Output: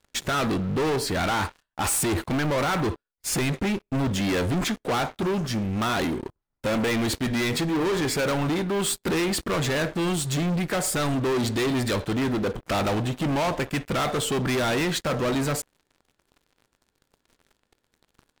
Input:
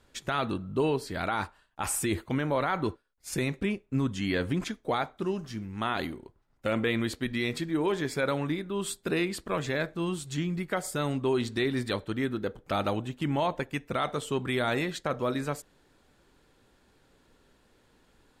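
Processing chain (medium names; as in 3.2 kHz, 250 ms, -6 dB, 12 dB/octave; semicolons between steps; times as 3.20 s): waveshaping leveller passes 5; trim -3.5 dB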